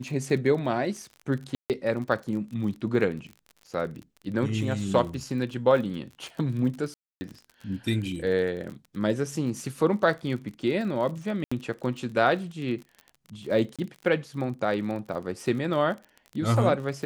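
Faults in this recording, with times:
surface crackle 39 per second −35 dBFS
0:01.55–0:01.70: drop-out 148 ms
0:06.94–0:07.21: drop-out 270 ms
0:11.44–0:11.52: drop-out 75 ms
0:13.76–0:13.79: drop-out 26 ms

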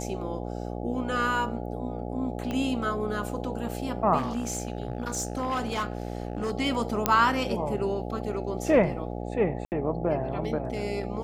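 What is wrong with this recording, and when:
mains buzz 60 Hz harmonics 14 −34 dBFS
0:02.51: click −18 dBFS
0:04.17–0:06.52: clipping −24.5 dBFS
0:07.06: click −5 dBFS
0:09.65–0:09.72: drop-out 69 ms

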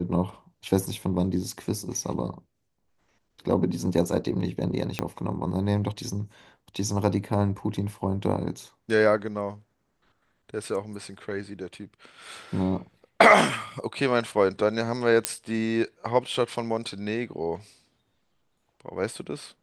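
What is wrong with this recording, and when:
0:04.99: click −10 dBFS
0:15.25: click −4 dBFS

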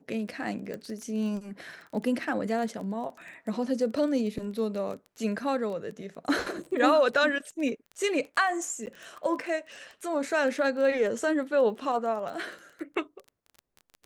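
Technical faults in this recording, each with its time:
surface crackle 16 per second −35 dBFS
0:00.74: click
0:08.86–0:08.87: drop-out 9.6 ms

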